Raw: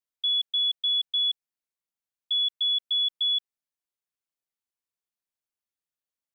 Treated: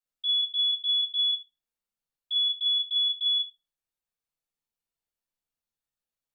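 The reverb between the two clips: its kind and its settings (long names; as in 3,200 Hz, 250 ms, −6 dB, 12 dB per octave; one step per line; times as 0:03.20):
rectangular room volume 190 cubic metres, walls furnished, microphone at 6 metres
level −10.5 dB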